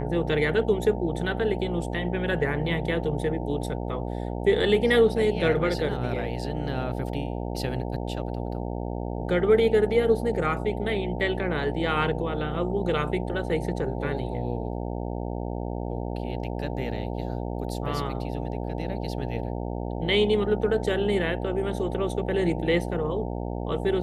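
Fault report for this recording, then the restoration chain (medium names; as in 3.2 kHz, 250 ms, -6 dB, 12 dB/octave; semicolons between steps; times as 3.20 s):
buzz 60 Hz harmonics 15 -31 dBFS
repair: de-hum 60 Hz, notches 15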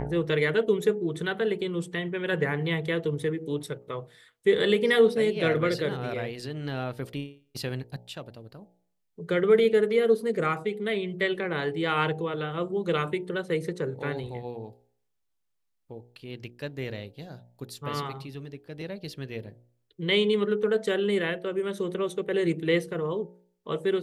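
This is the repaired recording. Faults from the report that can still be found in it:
nothing left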